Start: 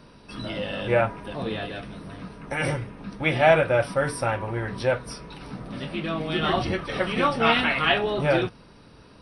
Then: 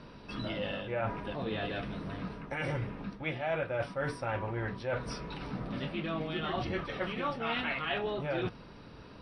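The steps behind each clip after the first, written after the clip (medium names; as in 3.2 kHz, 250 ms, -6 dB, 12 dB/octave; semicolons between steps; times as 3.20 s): low-pass 4.5 kHz 12 dB/octave; reverse; compression 5:1, threshold -32 dBFS, peak gain reduction 17.5 dB; reverse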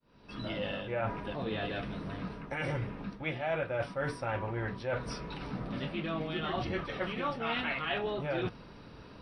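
fade-in on the opening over 0.53 s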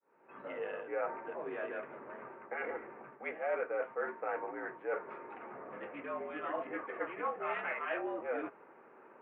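local Wiener filter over 9 samples; mistuned SSB -59 Hz 420–2300 Hz; trim -1 dB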